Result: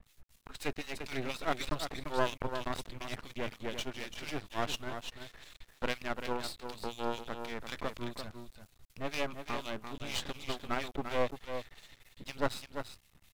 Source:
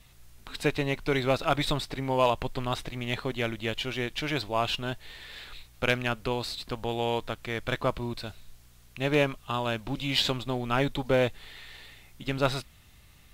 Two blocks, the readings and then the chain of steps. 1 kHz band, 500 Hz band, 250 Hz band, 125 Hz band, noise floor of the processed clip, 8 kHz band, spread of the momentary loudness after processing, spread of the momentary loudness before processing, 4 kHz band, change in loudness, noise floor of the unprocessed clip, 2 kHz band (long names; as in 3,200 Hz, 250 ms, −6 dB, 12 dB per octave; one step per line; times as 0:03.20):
−7.0 dB, −9.0 dB, −9.0 dB, −13.0 dB, −67 dBFS, −3.0 dB, 15 LU, 17 LU, −9.0 dB, −9.0 dB, −56 dBFS, −8.0 dB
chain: two-band tremolo in antiphase 4.1 Hz, depth 100%, crossover 1,800 Hz
on a send: single-tap delay 343 ms −8 dB
on the sum: half-wave rectification